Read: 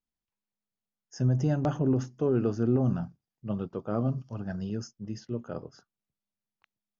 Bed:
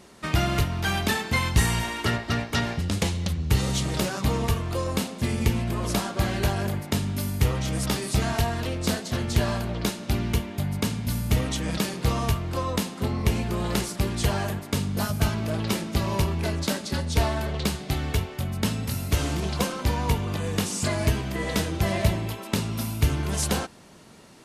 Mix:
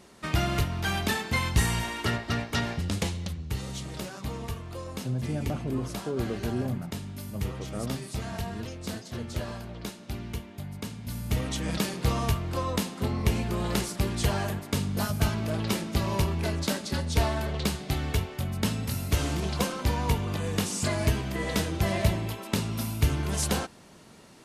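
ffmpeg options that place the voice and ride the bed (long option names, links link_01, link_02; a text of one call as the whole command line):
ffmpeg -i stem1.wav -i stem2.wav -filter_complex "[0:a]adelay=3850,volume=-5.5dB[link_01];[1:a]volume=5.5dB,afade=type=out:start_time=2.91:duration=0.61:silence=0.421697,afade=type=in:start_time=10.98:duration=0.72:silence=0.375837[link_02];[link_01][link_02]amix=inputs=2:normalize=0" out.wav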